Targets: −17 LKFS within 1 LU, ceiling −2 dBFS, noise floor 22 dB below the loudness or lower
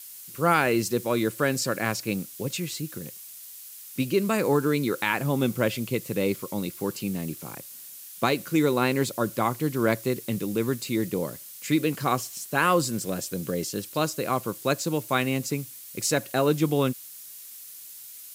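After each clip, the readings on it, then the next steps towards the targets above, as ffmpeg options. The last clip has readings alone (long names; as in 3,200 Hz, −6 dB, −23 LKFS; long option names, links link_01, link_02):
background noise floor −44 dBFS; target noise floor −49 dBFS; integrated loudness −26.5 LKFS; sample peak −8.5 dBFS; target loudness −17.0 LKFS
→ -af "afftdn=noise_reduction=6:noise_floor=-44"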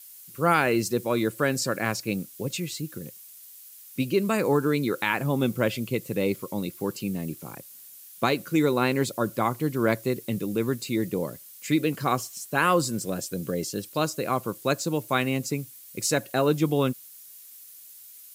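background noise floor −48 dBFS; target noise floor −49 dBFS
→ -af "afftdn=noise_reduction=6:noise_floor=-48"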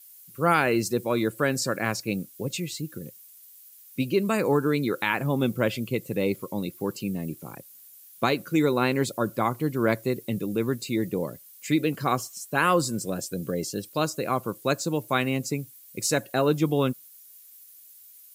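background noise floor −51 dBFS; integrated loudness −26.5 LKFS; sample peak −8.5 dBFS; target loudness −17.0 LKFS
→ -af "volume=9.5dB,alimiter=limit=-2dB:level=0:latency=1"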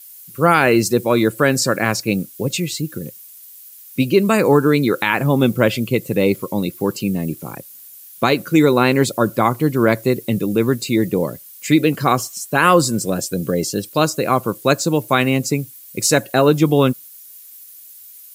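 integrated loudness −17.5 LKFS; sample peak −2.0 dBFS; background noise floor −41 dBFS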